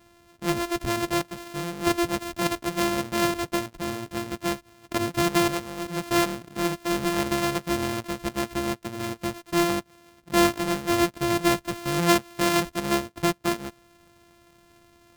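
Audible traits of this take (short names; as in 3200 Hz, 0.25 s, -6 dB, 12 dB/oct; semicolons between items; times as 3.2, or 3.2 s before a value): a buzz of ramps at a fixed pitch in blocks of 128 samples; AAC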